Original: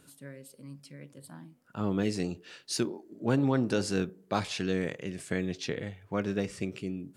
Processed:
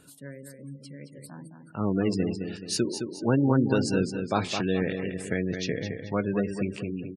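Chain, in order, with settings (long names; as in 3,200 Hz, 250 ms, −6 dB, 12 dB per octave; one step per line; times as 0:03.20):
repeating echo 214 ms, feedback 43%, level −7 dB
gate on every frequency bin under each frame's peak −25 dB strong
level +3.5 dB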